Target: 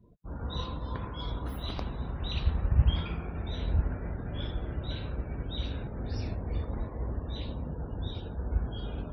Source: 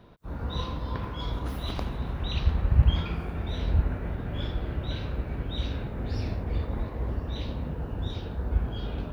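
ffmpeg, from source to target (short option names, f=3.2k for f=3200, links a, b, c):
-af "crystalizer=i=1:c=0,afftdn=nr=27:nf=-48,volume=-3.5dB"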